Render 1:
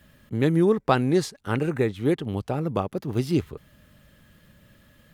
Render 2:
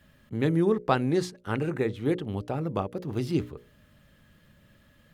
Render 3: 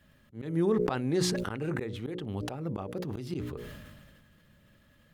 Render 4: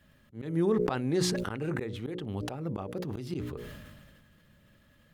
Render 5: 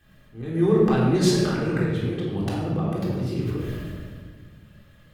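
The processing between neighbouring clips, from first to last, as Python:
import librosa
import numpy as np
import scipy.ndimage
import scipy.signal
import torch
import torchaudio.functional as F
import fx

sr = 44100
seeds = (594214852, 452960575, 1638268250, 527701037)

y1 = fx.high_shelf(x, sr, hz=7300.0, db=-5.5)
y1 = fx.hum_notches(y1, sr, base_hz=60, count=10)
y1 = F.gain(torch.from_numpy(y1), -3.0).numpy()
y2 = fx.auto_swell(y1, sr, attack_ms=171.0)
y2 = fx.sustainer(y2, sr, db_per_s=31.0)
y2 = F.gain(torch.from_numpy(y2), -3.5).numpy()
y3 = y2
y4 = fx.room_shoebox(y3, sr, seeds[0], volume_m3=1200.0, walls='mixed', distance_m=3.7)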